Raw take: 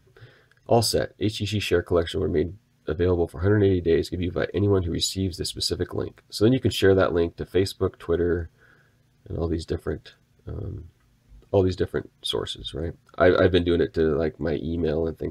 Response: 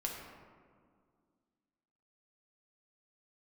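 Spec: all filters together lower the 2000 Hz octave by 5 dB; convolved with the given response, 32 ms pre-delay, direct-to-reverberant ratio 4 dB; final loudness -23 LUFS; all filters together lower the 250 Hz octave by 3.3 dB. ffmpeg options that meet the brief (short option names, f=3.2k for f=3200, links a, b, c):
-filter_complex "[0:a]equalizer=f=250:t=o:g=-4.5,equalizer=f=2k:t=o:g=-7.5,asplit=2[a][b];[1:a]atrim=start_sample=2205,adelay=32[c];[b][c]afir=irnorm=-1:irlink=0,volume=-5.5dB[d];[a][d]amix=inputs=2:normalize=0,volume=1.5dB"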